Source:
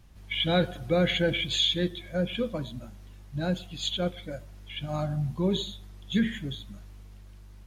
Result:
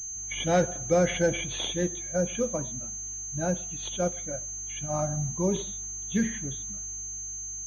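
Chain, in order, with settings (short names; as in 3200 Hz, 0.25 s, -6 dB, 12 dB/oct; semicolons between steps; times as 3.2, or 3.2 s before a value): dynamic EQ 700 Hz, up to +6 dB, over -41 dBFS, Q 0.89; pulse-width modulation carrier 6300 Hz; gain -2 dB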